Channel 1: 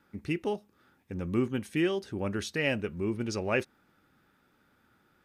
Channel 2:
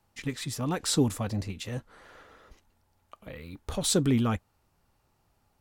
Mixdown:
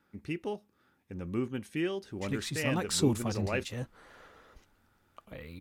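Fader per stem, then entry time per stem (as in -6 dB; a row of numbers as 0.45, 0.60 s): -4.5, -2.5 dB; 0.00, 2.05 s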